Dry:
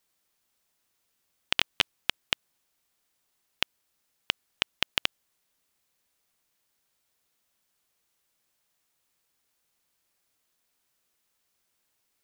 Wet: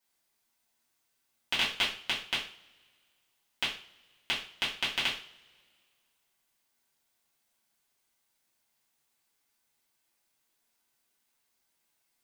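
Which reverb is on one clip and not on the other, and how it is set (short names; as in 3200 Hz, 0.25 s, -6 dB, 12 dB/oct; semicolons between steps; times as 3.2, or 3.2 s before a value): two-slope reverb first 0.42 s, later 2 s, from -26 dB, DRR -9 dB; gain -10 dB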